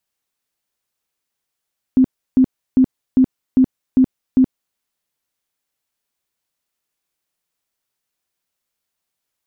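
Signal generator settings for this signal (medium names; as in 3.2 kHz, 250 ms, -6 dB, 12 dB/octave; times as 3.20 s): tone bursts 259 Hz, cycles 19, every 0.40 s, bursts 7, -7.5 dBFS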